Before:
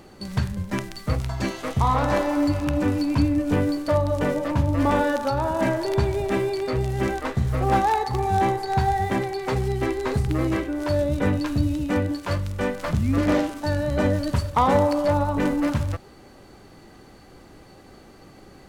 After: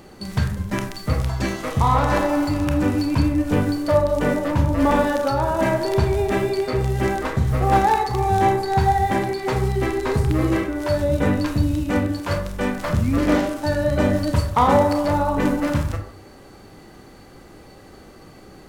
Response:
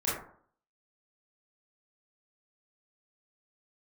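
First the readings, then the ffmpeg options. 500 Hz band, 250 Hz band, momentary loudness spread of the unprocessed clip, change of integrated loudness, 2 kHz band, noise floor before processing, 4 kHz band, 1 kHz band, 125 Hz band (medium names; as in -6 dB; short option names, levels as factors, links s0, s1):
+3.0 dB, +2.5 dB, 6 LU, +3.0 dB, +3.0 dB, -48 dBFS, +2.5 dB, +3.5 dB, +2.5 dB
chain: -filter_complex "[0:a]asplit=2[s0][s1];[1:a]atrim=start_sample=2205,highshelf=f=8200:g=9.5[s2];[s1][s2]afir=irnorm=-1:irlink=0,volume=0.299[s3];[s0][s3]amix=inputs=2:normalize=0"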